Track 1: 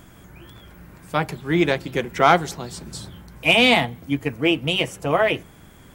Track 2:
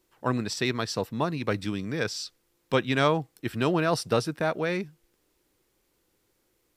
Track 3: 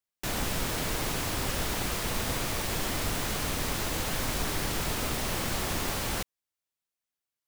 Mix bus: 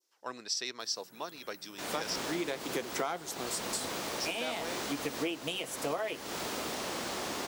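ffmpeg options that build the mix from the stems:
-filter_complex "[0:a]highpass=270,highshelf=f=5.6k:g=11,adelay=800,volume=-1dB[a];[1:a]highpass=450,equalizer=f=5.5k:t=o:w=0.91:g=14,volume=-11dB,asplit=3[b][c][d];[b]atrim=end=2.16,asetpts=PTS-STARTPTS,afade=t=out:st=2.156:d=0.004:c=hsin[e];[c]atrim=start=2.16:end=4.18,asetpts=PTS-STARTPTS,volume=0[f];[d]atrim=start=4.18,asetpts=PTS-STARTPTS,afade=t=in:d=0.004:c=hsin[g];[e][f][g]concat=n=3:v=0:a=1,asplit=2[h][i];[2:a]acrossover=split=220 7700:gain=0.1 1 0.251[j][k][l];[j][k][l]amix=inputs=3:normalize=0,dynaudnorm=f=230:g=3:m=7dB,adelay=1550,volume=-7.5dB[m];[i]apad=whole_len=297457[n];[a][n]sidechaincompress=threshold=-49dB:ratio=4:attack=47:release=456[o];[o][m]amix=inputs=2:normalize=0,highpass=44,acompressor=threshold=-30dB:ratio=10,volume=0dB[p];[h][p]amix=inputs=2:normalize=0,adynamicequalizer=threshold=0.00398:dfrequency=2200:dqfactor=0.78:tfrequency=2200:tqfactor=0.78:attack=5:release=100:ratio=0.375:range=2:mode=cutabove:tftype=bell"

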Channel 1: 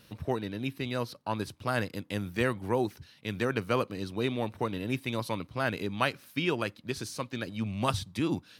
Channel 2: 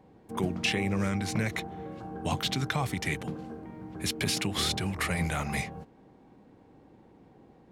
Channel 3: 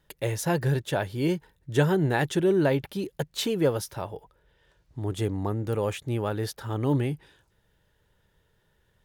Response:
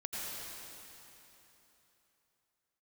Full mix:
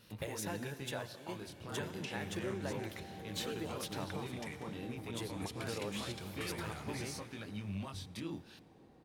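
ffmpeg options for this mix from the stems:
-filter_complex "[0:a]acompressor=threshold=-33dB:ratio=6,alimiter=level_in=6.5dB:limit=-24dB:level=0:latency=1:release=67,volume=-6.5dB,flanger=delay=18.5:depth=7.6:speed=0.28,volume=-1dB,asplit=3[a][b][c];[b]volume=-22dB[d];[1:a]acompressor=threshold=-39dB:ratio=4,adelay=1400,volume=-8dB,asplit=2[e][f];[f]volume=-8.5dB[g];[2:a]lowshelf=f=370:g=-12,acompressor=threshold=-39dB:ratio=6,volume=-2dB,asplit=2[h][i];[i]volume=-12dB[j];[c]apad=whole_len=399030[k];[h][k]sidechaingate=range=-33dB:threshold=-48dB:ratio=16:detection=peak[l];[3:a]atrim=start_sample=2205[m];[d][g][j]amix=inputs=3:normalize=0[n];[n][m]afir=irnorm=-1:irlink=0[o];[a][e][l][o]amix=inputs=4:normalize=0"

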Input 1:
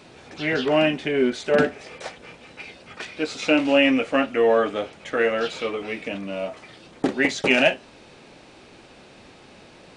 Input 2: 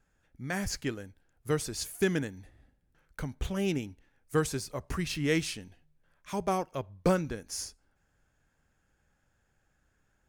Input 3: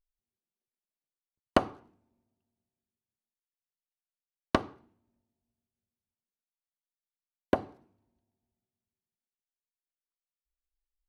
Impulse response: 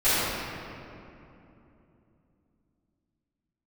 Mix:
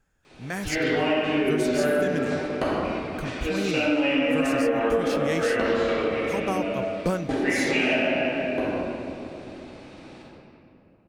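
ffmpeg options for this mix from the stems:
-filter_complex "[0:a]adelay=250,volume=-12dB,asplit=2[a][b];[b]volume=-5.5dB[c];[1:a]volume=1.5dB[d];[2:a]adelay=1050,volume=-11.5dB,asplit=2[e][f];[f]volume=-4.5dB[g];[3:a]atrim=start_sample=2205[h];[c][g]amix=inputs=2:normalize=0[i];[i][h]afir=irnorm=-1:irlink=0[j];[a][d][e][j]amix=inputs=4:normalize=0,acompressor=threshold=-19dB:ratio=6"

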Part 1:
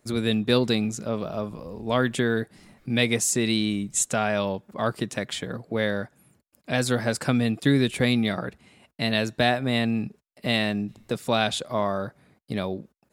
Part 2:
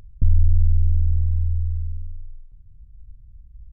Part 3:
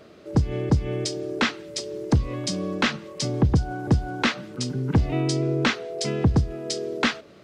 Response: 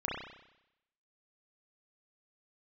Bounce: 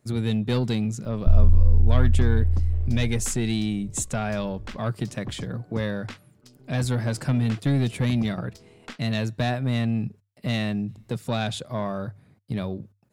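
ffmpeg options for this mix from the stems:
-filter_complex "[0:a]equalizer=f=110:w=0.81:g=12,bandreject=f=50:t=h:w=6,bandreject=f=100:t=h:w=6,asoftclip=type=tanh:threshold=-11dB,volume=-4.5dB[a];[1:a]adelay=1050,volume=0dB[b];[2:a]aeval=exprs='0.596*(cos(1*acos(clip(val(0)/0.596,-1,1)))-cos(1*PI/2))+0.0376*(cos(6*acos(clip(val(0)/0.596,-1,1)))-cos(6*PI/2))+0.0596*(cos(7*acos(clip(val(0)/0.596,-1,1)))-cos(7*PI/2))':c=same,adelay=1850,volume=-16dB[c];[a][b][c]amix=inputs=3:normalize=0"

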